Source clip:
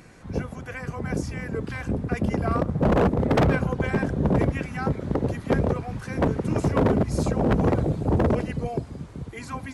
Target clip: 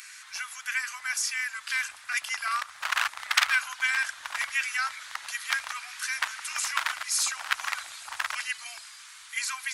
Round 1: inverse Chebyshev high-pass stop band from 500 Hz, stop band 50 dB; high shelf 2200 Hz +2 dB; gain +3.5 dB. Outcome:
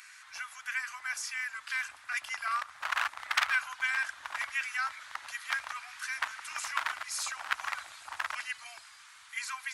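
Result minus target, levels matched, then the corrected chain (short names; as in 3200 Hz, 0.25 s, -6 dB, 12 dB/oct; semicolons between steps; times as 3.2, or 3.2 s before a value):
4000 Hz band -2.5 dB
inverse Chebyshev high-pass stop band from 500 Hz, stop band 50 dB; high shelf 2200 Hz +12.5 dB; gain +3.5 dB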